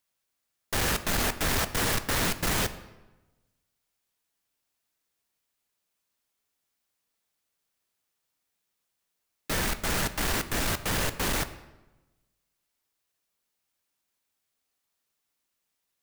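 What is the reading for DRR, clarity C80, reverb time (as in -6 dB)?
10.5 dB, 15.5 dB, 1.1 s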